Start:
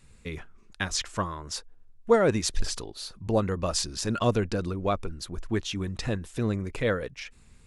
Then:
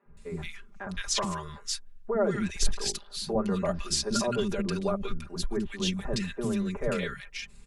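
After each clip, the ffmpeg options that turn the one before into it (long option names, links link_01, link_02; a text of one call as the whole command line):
ffmpeg -i in.wav -filter_complex "[0:a]alimiter=limit=-20dB:level=0:latency=1:release=30,aecho=1:1:5:0.9,acrossover=split=290|1500[link_01][link_02][link_03];[link_01]adelay=60[link_04];[link_03]adelay=170[link_05];[link_04][link_02][link_05]amix=inputs=3:normalize=0" out.wav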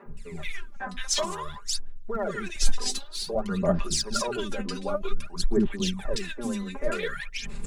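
ffmpeg -i in.wav -af "equalizer=frequency=66:width_type=o:width=2:gain=-8,areverse,acompressor=mode=upward:threshold=-30dB:ratio=2.5,areverse,aphaser=in_gain=1:out_gain=1:delay=4:decay=0.74:speed=0.53:type=sinusoidal,volume=-1.5dB" out.wav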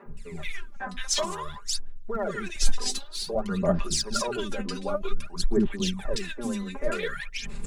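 ffmpeg -i in.wav -af anull out.wav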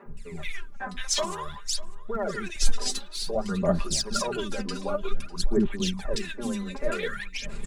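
ffmpeg -i in.wav -af "aecho=1:1:599:0.106" out.wav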